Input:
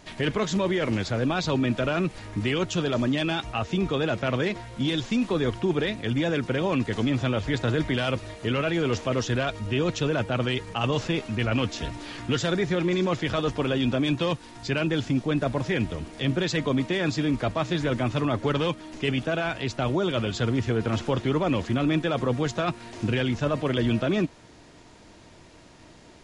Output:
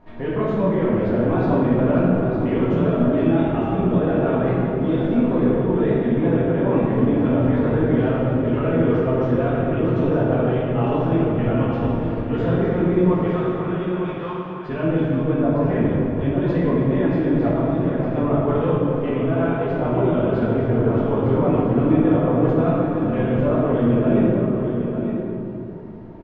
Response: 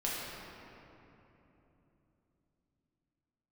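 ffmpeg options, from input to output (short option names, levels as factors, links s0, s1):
-filter_complex "[0:a]asettb=1/sr,asplit=3[s0][s1][s2];[s0]atrim=end=13.204[s3];[s1]atrim=start=13.2:end=14.67,asetpts=PTS-STARTPTS,afade=t=in:d=0.004:c=qsin,afade=t=out:st=1.466:d=0.004:c=qsin,highpass=f=870:w=0.5412,highpass=f=870:w=1.3066[s4];[s2]atrim=start=14.666[s5];[s3][s4]acrossfade=d=0.004:c1=hsin:c2=qsin[s6];[s6][s5]acrossfade=d=0.004:c1=qsin:c2=hsin,asettb=1/sr,asplit=3[s7][s8][s9];[s7]atrim=end=17.554[s10];[s8]atrim=start=17.55:end=18.07,asetpts=PTS-STARTPTS,afade=t=in:d=0.004:c=qsin,afade=t=out:st=0.516:d=0.004:c=qsin,acompressor=threshold=0.0447:ratio=6[s11];[s9]atrim=start=18.066[s12];[s10][s11]acrossfade=d=0.004:c1=hsin:c2=qsin[s13];[s13][s12]acrossfade=d=0.004:c1=qsin:c2=hsin,lowpass=1100,aecho=1:1:905:0.398[s14];[1:a]atrim=start_sample=2205,asetrate=57330,aresample=44100[s15];[s14][s15]afir=irnorm=-1:irlink=0,volume=1.33"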